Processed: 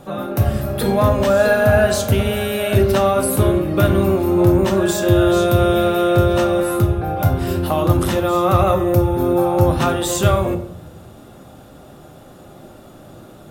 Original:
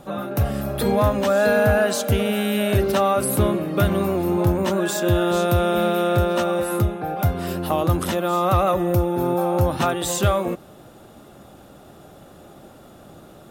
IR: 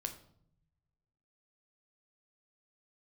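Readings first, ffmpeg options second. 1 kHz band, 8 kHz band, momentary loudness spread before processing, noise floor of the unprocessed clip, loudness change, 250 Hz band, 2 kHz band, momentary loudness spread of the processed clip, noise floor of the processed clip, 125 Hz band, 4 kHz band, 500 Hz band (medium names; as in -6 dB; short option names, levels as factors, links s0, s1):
+2.5 dB, +2.5 dB, 5 LU, -46 dBFS, +4.0 dB, +4.5 dB, +3.0 dB, 5 LU, -42 dBFS, +5.0 dB, +3.0 dB, +4.5 dB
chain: -filter_complex "[1:a]atrim=start_sample=2205[s0];[0:a][s0]afir=irnorm=-1:irlink=0,volume=1.58"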